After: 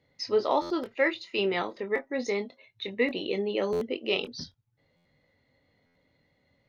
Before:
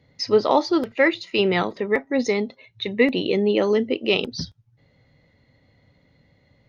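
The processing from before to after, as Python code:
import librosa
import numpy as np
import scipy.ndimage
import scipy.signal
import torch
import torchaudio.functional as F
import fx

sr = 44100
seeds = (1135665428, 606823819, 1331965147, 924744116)

y = fx.bass_treble(x, sr, bass_db=-7, treble_db=-1)
y = fx.chorus_voices(y, sr, voices=6, hz=0.36, base_ms=23, depth_ms=3.1, mix_pct=30)
y = fx.buffer_glitch(y, sr, at_s=(0.61, 3.72, 4.96, 5.86), block=512, repeats=7)
y = y * librosa.db_to_amplitude(-4.5)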